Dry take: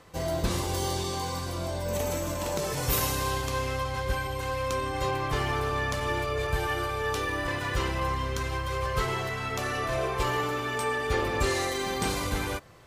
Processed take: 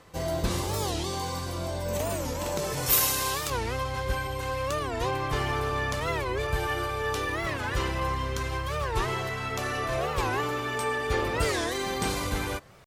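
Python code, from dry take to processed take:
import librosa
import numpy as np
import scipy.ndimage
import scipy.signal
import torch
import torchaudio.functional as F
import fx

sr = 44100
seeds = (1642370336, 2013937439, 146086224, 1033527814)

y = fx.tilt_eq(x, sr, slope=2.0, at=(2.86, 3.52))
y = fx.record_warp(y, sr, rpm=45.0, depth_cents=250.0)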